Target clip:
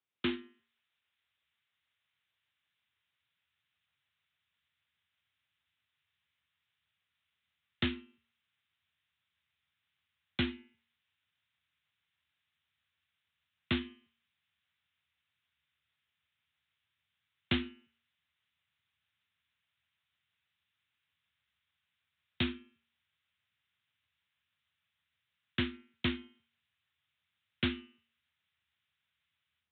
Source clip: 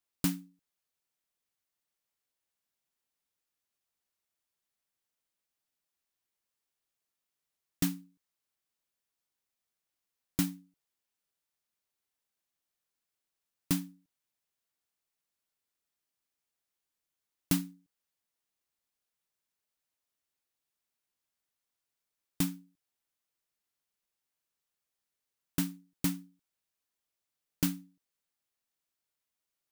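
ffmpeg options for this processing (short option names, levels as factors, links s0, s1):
-filter_complex "[0:a]bandreject=f=162.5:t=h:w=4,bandreject=f=325:t=h:w=4,bandreject=f=487.5:t=h:w=4,bandreject=f=650:t=h:w=4,bandreject=f=812.5:t=h:w=4,bandreject=f=975:t=h:w=4,bandreject=f=1137.5:t=h:w=4,bandreject=f=1300:t=h:w=4,bandreject=f=1462.5:t=h:w=4,bandreject=f=1625:t=h:w=4,bandreject=f=1787.5:t=h:w=4,bandreject=f=1950:t=h:w=4,bandreject=f=2112.5:t=h:w=4,bandreject=f=2275:t=h:w=4,bandreject=f=2437.5:t=h:w=4,bandreject=f=2600:t=h:w=4,bandreject=f=2762.5:t=h:w=4,bandreject=f=2925:t=h:w=4,bandreject=f=3087.5:t=h:w=4,afreqshift=70,acrossover=split=430|1300[s0][s1][s2];[s1]tremolo=f=6.4:d=0.72[s3];[s2]dynaudnorm=f=160:g=3:m=4.47[s4];[s0][s3][s4]amix=inputs=3:normalize=0,asubboost=boost=8:cutoff=120,aresample=8000,asoftclip=type=tanh:threshold=0.0708,aresample=44100"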